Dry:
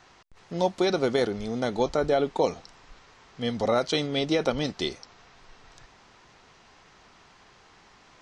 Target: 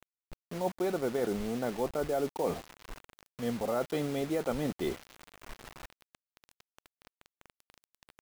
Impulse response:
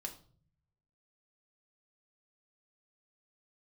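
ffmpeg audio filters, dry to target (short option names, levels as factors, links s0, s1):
-af "lowpass=1600,equalizer=f=100:w=4.6:g=-8,areverse,acompressor=threshold=0.02:ratio=4,areverse,acrusher=bits=7:mix=0:aa=0.000001,volume=1.58"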